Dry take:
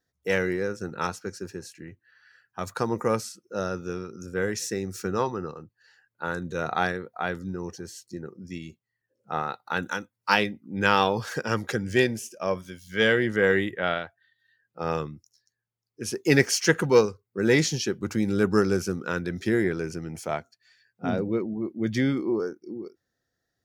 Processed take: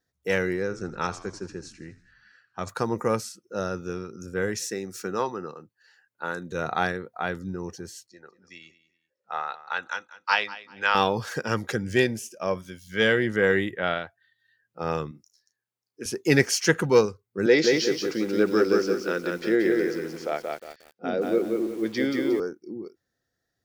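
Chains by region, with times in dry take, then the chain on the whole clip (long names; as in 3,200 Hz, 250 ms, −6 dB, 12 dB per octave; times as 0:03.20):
0:00.62–0:02.69: low-pass filter 8,000 Hz 24 dB per octave + echo with shifted repeats 81 ms, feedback 56%, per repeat −75 Hz, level −16 dB
0:04.62–0:06.52: high-pass filter 140 Hz + low-shelf EQ 240 Hz −5.5 dB
0:08.07–0:10.95: three-way crossover with the lows and the highs turned down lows −22 dB, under 590 Hz, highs −23 dB, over 6,000 Hz + repeating echo 195 ms, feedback 26%, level −17 dB
0:15.11–0:16.06: high-pass filter 230 Hz + double-tracking delay 34 ms −9 dB
0:17.46–0:22.40: loudspeaker in its box 300–5,500 Hz, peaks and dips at 330 Hz +4 dB, 500 Hz +6 dB, 1,000 Hz −7 dB, 4,900 Hz +5 dB + feedback echo at a low word length 179 ms, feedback 35%, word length 8 bits, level −3 dB
whole clip: no processing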